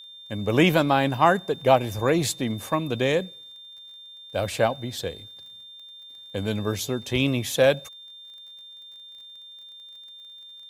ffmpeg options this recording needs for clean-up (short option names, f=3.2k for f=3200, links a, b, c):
-af "adeclick=t=4,bandreject=f=3.6k:w=30"